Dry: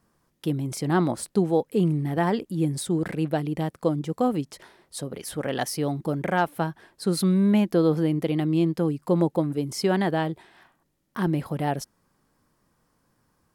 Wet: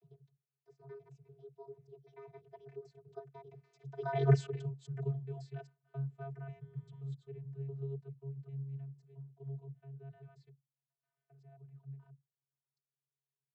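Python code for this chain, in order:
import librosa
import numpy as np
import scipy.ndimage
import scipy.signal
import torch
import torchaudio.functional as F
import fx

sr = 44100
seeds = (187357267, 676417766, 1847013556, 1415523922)

y = fx.block_reorder(x, sr, ms=116.0, group=6)
y = fx.doppler_pass(y, sr, speed_mps=53, closest_m=3.5, pass_at_s=4.3)
y = fx.vocoder(y, sr, bands=32, carrier='square', carrier_hz=137.0)
y = y * 10.0 ** (7.0 / 20.0)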